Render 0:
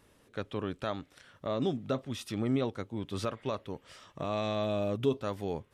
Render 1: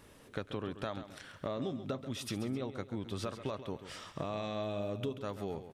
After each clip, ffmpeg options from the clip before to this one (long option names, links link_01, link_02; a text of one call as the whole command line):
ffmpeg -i in.wav -filter_complex "[0:a]acompressor=threshold=-41dB:ratio=5,asplit=2[link_01][link_02];[link_02]aecho=0:1:135|263:0.266|0.112[link_03];[link_01][link_03]amix=inputs=2:normalize=0,volume=5.5dB" out.wav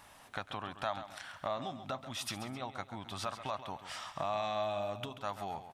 ffmpeg -i in.wav -af "lowshelf=frequency=580:width_type=q:width=3:gain=-8.5,volume=3dB" out.wav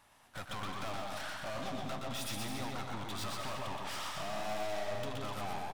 ffmpeg -i in.wav -filter_complex "[0:a]aeval=exprs='(tanh(282*val(0)+0.45)-tanh(0.45))/282':channel_layout=same,asplit=2[link_01][link_02];[link_02]aecho=0:1:120|216|292.8|354.2|403.4:0.631|0.398|0.251|0.158|0.1[link_03];[link_01][link_03]amix=inputs=2:normalize=0,agate=range=-15dB:threshold=-52dB:ratio=16:detection=peak,volume=9dB" out.wav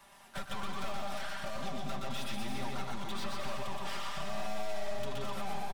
ffmpeg -i in.wav -filter_complex "[0:a]aecho=1:1:5.1:0.91,acrossover=split=120|4200[link_01][link_02][link_03];[link_02]alimiter=level_in=11.5dB:limit=-24dB:level=0:latency=1:release=372,volume=-11.5dB[link_04];[link_03]acompressor=threshold=-56dB:ratio=6[link_05];[link_01][link_04][link_05]amix=inputs=3:normalize=0,volume=4dB" out.wav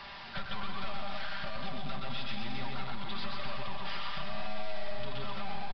ffmpeg -i in.wav -af "aeval=exprs='val(0)+0.5*0.00891*sgn(val(0))':channel_layout=same,equalizer=frequency=420:width_type=o:width=2.4:gain=-6.5,aresample=11025,aresample=44100,volume=2.5dB" out.wav